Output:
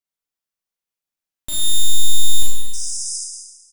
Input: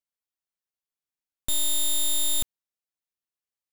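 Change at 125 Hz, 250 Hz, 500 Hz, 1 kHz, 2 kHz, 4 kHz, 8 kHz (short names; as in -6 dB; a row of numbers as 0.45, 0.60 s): +17.0, +1.5, -3.0, -1.0, +0.5, +6.5, +6.5 dB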